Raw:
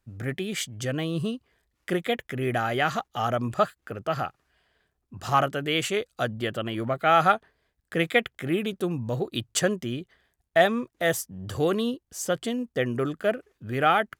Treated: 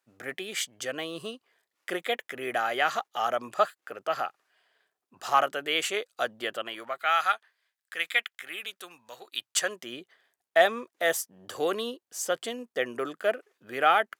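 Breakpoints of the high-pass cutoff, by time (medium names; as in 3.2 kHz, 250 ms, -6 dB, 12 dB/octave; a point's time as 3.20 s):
6.51 s 510 Hz
7.17 s 1.4 kHz
9.32 s 1.4 kHz
9.99 s 470 Hz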